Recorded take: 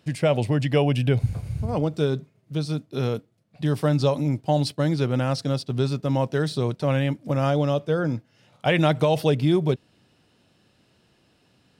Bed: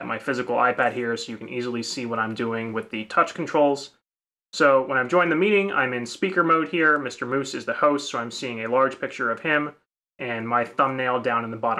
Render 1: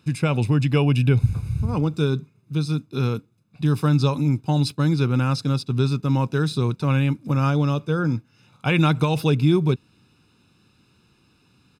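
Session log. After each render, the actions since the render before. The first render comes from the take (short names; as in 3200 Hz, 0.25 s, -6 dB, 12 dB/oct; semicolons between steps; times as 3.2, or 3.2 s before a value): comb 0.8 ms, depth 70%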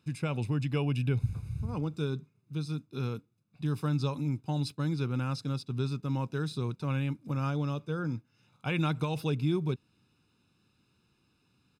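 gain -11 dB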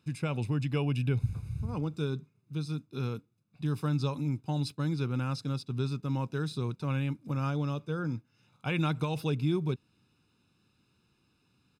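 nothing audible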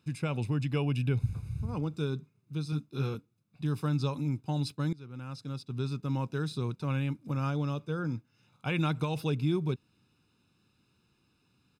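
2.71–3.15 doubler 14 ms -4 dB; 4.93–6.04 fade in linear, from -21 dB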